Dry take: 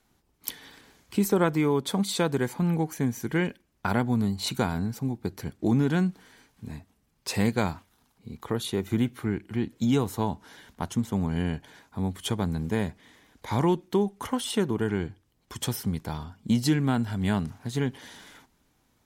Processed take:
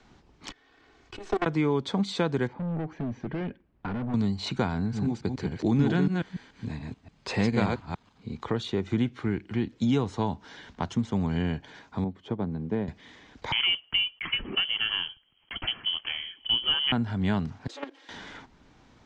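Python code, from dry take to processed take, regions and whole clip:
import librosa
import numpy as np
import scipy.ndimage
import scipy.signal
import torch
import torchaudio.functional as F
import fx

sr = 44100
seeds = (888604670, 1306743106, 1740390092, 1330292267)

y = fx.chain(x, sr, fx.lower_of_two(delay_ms=2.7),
    fx.level_steps(step_db=23), at=(0.49, 1.46))
y = fx.chain(y, sr, fx.overload_stage(gain_db=30.0),
    fx.spacing_loss(db_at_10k=43), at=(2.47, 4.14))
y = fx.chain(y, sr, fx.reverse_delay(ms=144, wet_db=-3.5),
    fx.notch(hz=5600.0, q=11.0), at=(4.78, 8.39))
y = fx.chain(y, sr, fx.bandpass_q(hz=320.0, q=0.56),
    fx.upward_expand(threshold_db=-36.0, expansion=1.5), at=(12.04, 12.88))
y = fx.chain(y, sr, fx.block_float(bits=5),
    fx.freq_invert(carrier_hz=3200), at=(13.52, 16.92))
y = fx.chain(y, sr, fx.lower_of_two(delay_ms=3.7),
    fx.cheby1_highpass(hz=290.0, order=5),
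    fx.level_steps(step_db=15), at=(17.67, 18.09))
y = scipy.signal.sosfilt(scipy.signal.bessel(8, 4200.0, 'lowpass', norm='mag', fs=sr, output='sos'), y)
y = fx.band_squash(y, sr, depth_pct=40)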